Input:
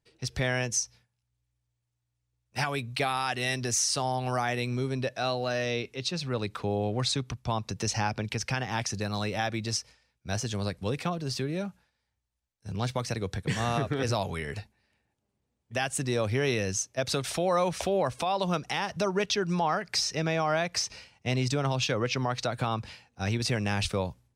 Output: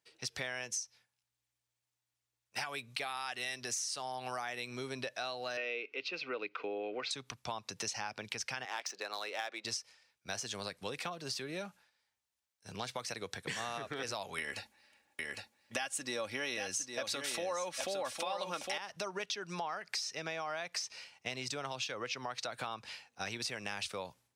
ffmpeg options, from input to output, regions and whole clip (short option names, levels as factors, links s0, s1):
-filter_complex "[0:a]asettb=1/sr,asplit=3[s0][s1][s2];[s0]atrim=end=5.574[s3];[s1]atrim=start=5.57:end=7.11,asetpts=PTS-STARTPTS,afade=t=in:d=0.004:c=qsin,afade=t=out:st=1.536:d=0.004:c=qsin,acompressor=mode=upward:threshold=0.00794:ratio=2.5:attack=3.2:release=140:knee=2.83:detection=peak,asuperstop=centerf=1700:order=4:qfactor=7.4,highpass=290,equalizer=f=300:t=q:w=4:g=9,equalizer=f=450:t=q:w=4:g=8,equalizer=f=880:t=q:w=4:g=-4,equalizer=f=1600:t=q:w=4:g=6,equalizer=f=2500:t=q:w=4:g=9,equalizer=f=3800:t=q:w=4:g=-8,lowpass=f=4100:w=0.5412,lowpass=f=4100:w=1.3066[s4];[s2]atrim=start=7.106[s5];[s3][s4]acrossfade=d=0.004:c1=hsin:c2=qsin[s6];[s6][s5]acrossfade=d=0.004:c1=qsin:c2=hsin,asettb=1/sr,asplit=3[s7][s8][s9];[s7]atrim=end=8.654[s10];[s8]atrim=start=8.65:end=9.65,asetpts=PTS-STARTPTS,afade=t=in:d=0.004:c=qsin,afade=t=out:st=0.996:d=0.004:c=qsin,highpass=f=340:w=0.5412,highpass=f=340:w=1.3066,adynamicsmooth=sensitivity=7:basefreq=3800[s11];[s9]atrim=start=9.646[s12];[s10][s11]acrossfade=d=0.004:c1=hsin:c2=qsin[s13];[s13][s12]acrossfade=d=0.004:c1=qsin:c2=hsin,asettb=1/sr,asplit=3[s14][s15][s16];[s14]atrim=end=14.384[s17];[s15]atrim=start=14.38:end=18.78,asetpts=PTS-STARTPTS,afade=t=in:d=0.004:c=qsin,afade=t=out:st=4.396:d=0.004:c=qsin,aecho=1:1:3.6:0.49,atrim=end_sample=194040,acontrast=38,aecho=1:1:808:0.447,atrim=end_sample=194040[s18];[s16]atrim=start=18.776[s19];[s17][s18]acrossfade=d=0.004:c1=hsin:c2=qsin[s20];[s20][s19]acrossfade=d=0.004:c1=qsin:c2=hsin,highpass=f=940:p=1,acompressor=threshold=0.0112:ratio=5,volume=1.33"